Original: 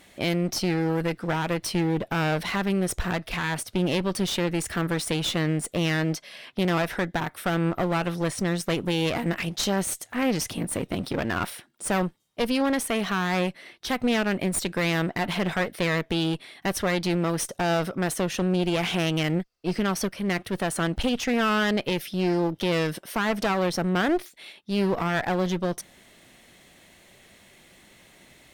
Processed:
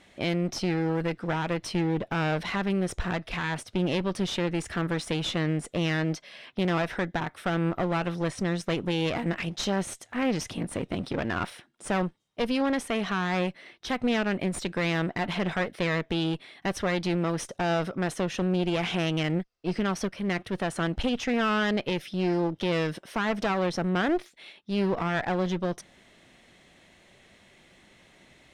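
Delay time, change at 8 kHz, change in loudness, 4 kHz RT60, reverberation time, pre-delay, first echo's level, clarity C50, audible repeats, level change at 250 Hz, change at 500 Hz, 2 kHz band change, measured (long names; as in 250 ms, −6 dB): no echo audible, −8.0 dB, −2.5 dB, no reverb audible, no reverb audible, no reverb audible, no echo audible, no reverb audible, no echo audible, −2.0 dB, −2.0 dB, −2.5 dB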